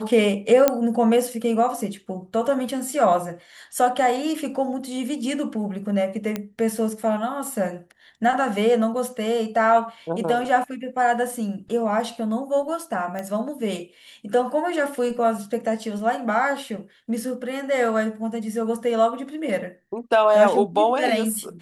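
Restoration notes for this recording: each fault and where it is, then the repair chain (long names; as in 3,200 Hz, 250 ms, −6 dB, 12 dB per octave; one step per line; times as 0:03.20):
0:00.68: click −3 dBFS
0:06.36: click −12 dBFS
0:13.19: click −17 dBFS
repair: click removal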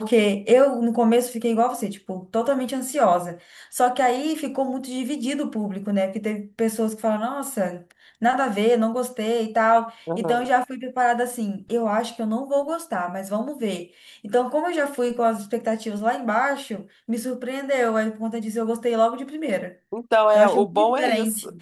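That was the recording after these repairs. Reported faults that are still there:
none of them is left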